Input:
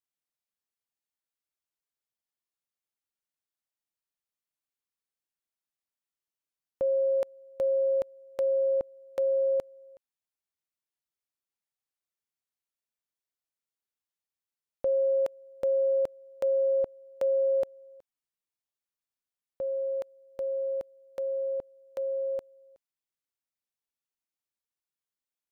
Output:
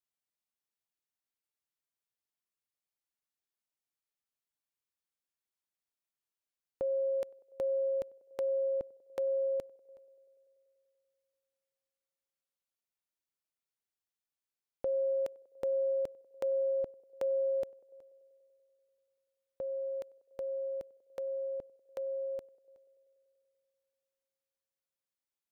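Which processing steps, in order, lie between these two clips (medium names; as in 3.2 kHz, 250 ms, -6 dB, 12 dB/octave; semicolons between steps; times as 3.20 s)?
dynamic bell 970 Hz, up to -6 dB, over -41 dBFS, Q 0.76; band-passed feedback delay 96 ms, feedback 80%, band-pass 510 Hz, level -23 dB; trim -3 dB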